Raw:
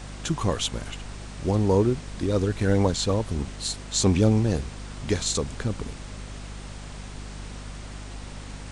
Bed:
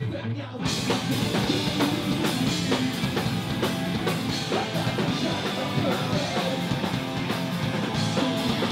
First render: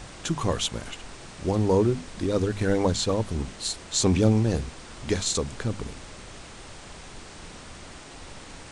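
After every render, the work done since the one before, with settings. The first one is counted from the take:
mains-hum notches 50/100/150/200/250 Hz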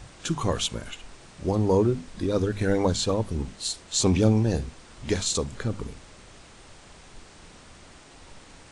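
noise reduction from a noise print 6 dB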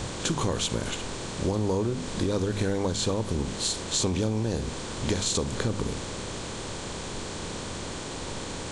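compressor on every frequency bin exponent 0.6
downward compressor 6 to 1, threshold −23 dBFS, peak gain reduction 10 dB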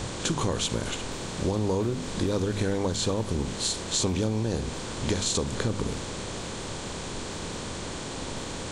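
mix in bed −22.5 dB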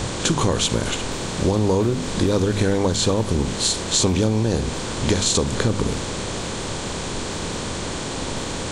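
level +7.5 dB

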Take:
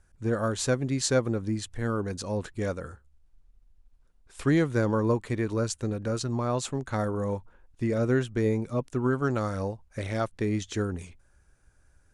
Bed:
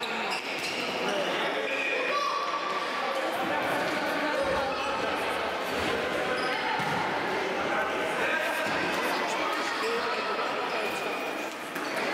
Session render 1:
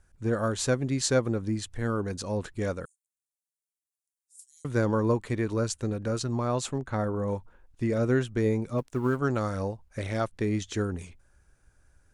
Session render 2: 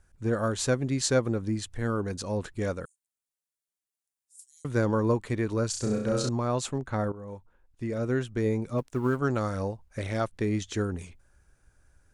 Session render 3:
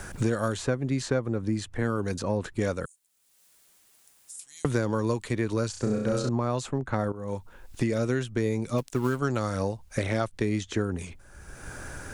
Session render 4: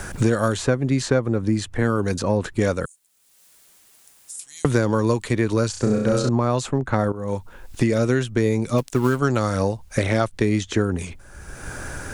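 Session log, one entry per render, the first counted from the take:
0:02.85–0:04.65: inverse Chebyshev high-pass filter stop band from 1,300 Hz, stop band 80 dB; 0:06.78–0:07.28: high-shelf EQ 3,400 Hz −10 dB; 0:08.78–0:09.19: mu-law and A-law mismatch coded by A
0:05.70–0:06.29: flutter between parallel walls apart 5.6 metres, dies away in 0.62 s; 0:07.12–0:08.77: fade in, from −13.5 dB
multiband upward and downward compressor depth 100%
level +7 dB

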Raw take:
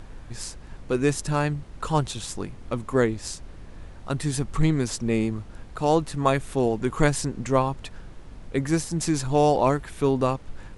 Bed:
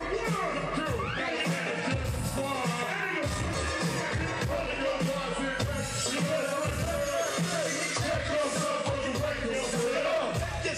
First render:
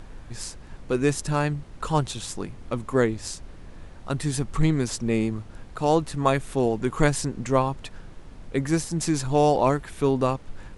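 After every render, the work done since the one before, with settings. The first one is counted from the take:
hum removal 50 Hz, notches 2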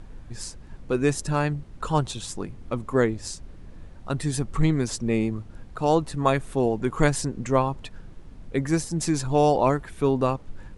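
broadband denoise 6 dB, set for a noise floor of −44 dBFS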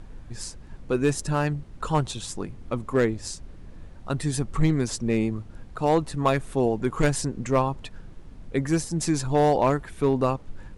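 gain into a clipping stage and back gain 13 dB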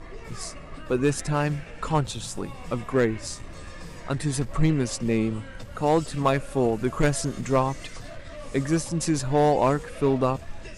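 mix in bed −13 dB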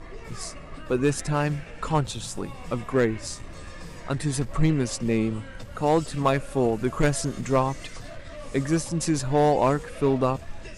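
no processing that can be heard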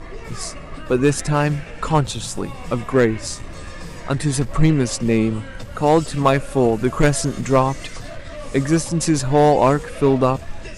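level +6.5 dB

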